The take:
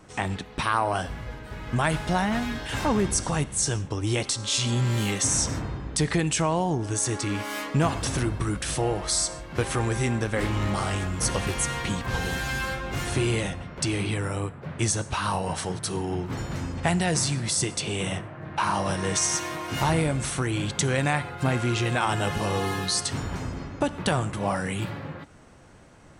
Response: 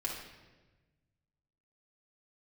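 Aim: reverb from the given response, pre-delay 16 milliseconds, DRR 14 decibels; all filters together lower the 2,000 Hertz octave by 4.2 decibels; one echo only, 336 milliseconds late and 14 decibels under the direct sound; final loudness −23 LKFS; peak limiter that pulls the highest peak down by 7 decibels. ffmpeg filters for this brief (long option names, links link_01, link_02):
-filter_complex "[0:a]equalizer=frequency=2000:width_type=o:gain=-5.5,alimiter=limit=-18dB:level=0:latency=1,aecho=1:1:336:0.2,asplit=2[link_01][link_02];[1:a]atrim=start_sample=2205,adelay=16[link_03];[link_02][link_03]afir=irnorm=-1:irlink=0,volume=-16.5dB[link_04];[link_01][link_04]amix=inputs=2:normalize=0,volume=5.5dB"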